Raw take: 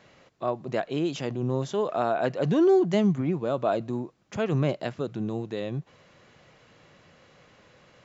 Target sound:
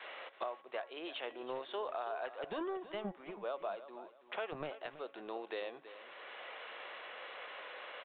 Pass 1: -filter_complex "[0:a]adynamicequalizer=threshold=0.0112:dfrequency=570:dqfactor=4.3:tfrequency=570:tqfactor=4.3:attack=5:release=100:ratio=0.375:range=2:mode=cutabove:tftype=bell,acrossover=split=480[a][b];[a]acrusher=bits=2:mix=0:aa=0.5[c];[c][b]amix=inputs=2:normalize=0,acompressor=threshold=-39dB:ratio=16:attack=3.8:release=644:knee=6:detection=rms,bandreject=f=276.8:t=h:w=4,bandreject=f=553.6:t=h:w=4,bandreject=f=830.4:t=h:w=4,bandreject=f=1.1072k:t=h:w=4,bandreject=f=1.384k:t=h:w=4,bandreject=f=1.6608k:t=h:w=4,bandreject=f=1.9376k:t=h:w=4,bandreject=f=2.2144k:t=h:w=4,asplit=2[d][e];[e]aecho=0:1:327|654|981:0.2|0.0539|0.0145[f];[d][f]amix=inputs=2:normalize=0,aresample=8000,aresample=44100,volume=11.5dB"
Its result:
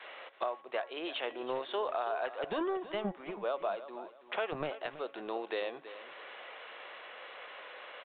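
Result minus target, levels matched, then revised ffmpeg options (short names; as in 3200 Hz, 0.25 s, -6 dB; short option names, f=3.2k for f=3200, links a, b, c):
compressor: peak gain reduction -5.5 dB
-filter_complex "[0:a]adynamicequalizer=threshold=0.0112:dfrequency=570:dqfactor=4.3:tfrequency=570:tqfactor=4.3:attack=5:release=100:ratio=0.375:range=2:mode=cutabove:tftype=bell,acrossover=split=480[a][b];[a]acrusher=bits=2:mix=0:aa=0.5[c];[c][b]amix=inputs=2:normalize=0,acompressor=threshold=-45dB:ratio=16:attack=3.8:release=644:knee=6:detection=rms,bandreject=f=276.8:t=h:w=4,bandreject=f=553.6:t=h:w=4,bandreject=f=830.4:t=h:w=4,bandreject=f=1.1072k:t=h:w=4,bandreject=f=1.384k:t=h:w=4,bandreject=f=1.6608k:t=h:w=4,bandreject=f=1.9376k:t=h:w=4,bandreject=f=2.2144k:t=h:w=4,asplit=2[d][e];[e]aecho=0:1:327|654|981:0.2|0.0539|0.0145[f];[d][f]amix=inputs=2:normalize=0,aresample=8000,aresample=44100,volume=11.5dB"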